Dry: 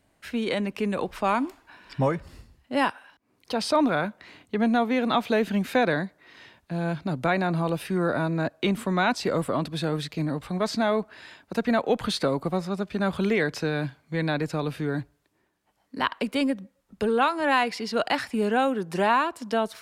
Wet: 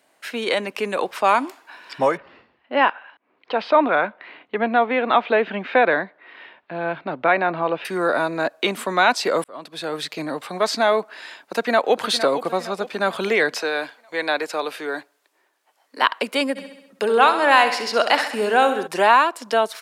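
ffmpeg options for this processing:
-filter_complex "[0:a]asettb=1/sr,asplit=3[a][b][c];[a]atrim=end=2.174[d];[b]atrim=start=2.17:end=7.85,asetpts=PTS-STARTPTS,afade=t=in:d=0.004:c=qsin,afade=t=out:st=5.676:d=0.004:c=qsin,lowpass=f=3k:w=0.5412,lowpass=f=3k:w=1.3066[e];[c]atrim=start=7.846[f];[d][e]acrossfade=d=0.004:c1=hsin:c2=qsin[g];[g][f]acrossfade=d=0.004:c1=qsin:c2=hsin,asplit=2[h][i];[i]afade=t=in:st=11.38:d=0.01,afade=t=out:st=12.03:d=0.01,aecho=0:1:460|920|1380|1840|2300:0.266073|0.133036|0.0665181|0.0332591|0.0166295[j];[h][j]amix=inputs=2:normalize=0,asettb=1/sr,asplit=3[k][l][m];[k]atrim=end=13.544[n];[l]atrim=start=13.54:end=16.02,asetpts=PTS-STARTPTS,afade=t=in:d=0.004:c=qsin,afade=t=out:st=2.476:d=0.004:c=qsin,highpass=360[o];[m]atrim=start=16.016[p];[n][o]acrossfade=d=0.004:c1=hsin:c2=qsin[q];[q][p]acrossfade=d=0.004:c1=qsin:c2=hsin,asplit=3[r][s][t];[r]afade=t=out:st=16.55:d=0.02[u];[s]aecho=1:1:66|132|198|264|330|396|462:0.299|0.176|0.104|0.0613|0.0362|0.0213|0.0126,afade=t=in:st=16.55:d=0.02,afade=t=out:st=18.86:d=0.02[v];[t]afade=t=in:st=18.86:d=0.02[w];[u][v][w]amix=inputs=3:normalize=0,asplit=2[x][y];[x]atrim=end=9.44,asetpts=PTS-STARTPTS,afade=t=out:st=9.436:d=0.004:c=hsin[z];[y]atrim=start=9.44,asetpts=PTS-STARTPTS,afade=t=in:d=0.69[aa];[z][aa]concat=n=2:v=0:a=1,highpass=450,volume=8dB"

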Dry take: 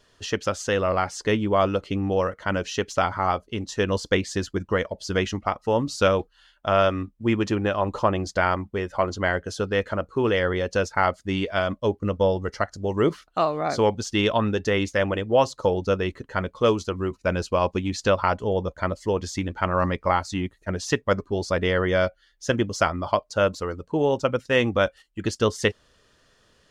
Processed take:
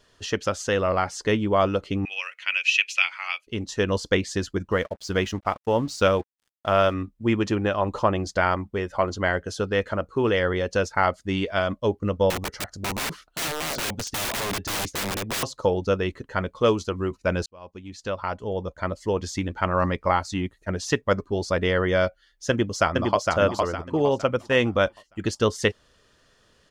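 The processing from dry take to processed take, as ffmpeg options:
-filter_complex "[0:a]asettb=1/sr,asplit=3[a][b][c];[a]atrim=end=2.054[d];[b]atrim=start=2.05:end=3.47,asetpts=PTS-STARTPTS,afade=t=in:d=0.004:c=qsin,afade=t=out:st=1.416:d=0.004:c=qsin,highpass=f=2.5k:t=q:w=15[e];[c]atrim=start=3.466[f];[d][e]acrossfade=d=0.004:c1=hsin:c2=qsin[g];[g][f]acrossfade=d=0.004:c1=qsin:c2=hsin,asettb=1/sr,asplit=3[h][i][j];[h]atrim=end=4.714[k];[i]atrim=start=4.71:end=6.94,asetpts=PTS-STARTPTS,afade=t=in:d=0.004:c=qsin,afade=t=out:st=2.226:d=0.004:c=qsin,aeval=exprs='sgn(val(0))*max(abs(val(0))-0.00376,0)':c=same[l];[j]atrim=start=6.936[m];[k][l]acrossfade=d=0.004:c1=hsin:c2=qsin[n];[n][m]acrossfade=d=0.004:c1=qsin:c2=hsin,asettb=1/sr,asplit=3[o][p][q];[o]atrim=end=12.304[r];[p]atrim=start=12.3:end=15.43,asetpts=PTS-STARTPTS,afade=t=in:d=0.004:c=qsin,afade=t=out:st=3.126:d=0.004:c=qsin,aeval=exprs='(mod(14.1*val(0)+1,2)-1)/14.1':c=same[s];[q]atrim=start=15.426[t];[r][s]acrossfade=d=0.004:c1=hsin:c2=qsin[u];[u][t]acrossfade=d=0.004:c1=qsin:c2=hsin,asplit=2[v][w];[w]afade=t=in:st=22.49:d=0.01,afade=t=out:st=23.2:d=0.01,aecho=0:1:460|920|1380|1840|2300:0.707946|0.247781|0.0867234|0.0303532|0.0106236[x];[v][x]amix=inputs=2:normalize=0,asplit=2[y][z];[y]atrim=end=17.46,asetpts=PTS-STARTPTS,afade=t=out:st=17.456:d=0.004:c=hsin[aa];[z]atrim=start=17.46,asetpts=PTS-STARTPTS,afade=t=in:d=1.79[ab];[aa][ab]concat=n=2:v=0:a=1"

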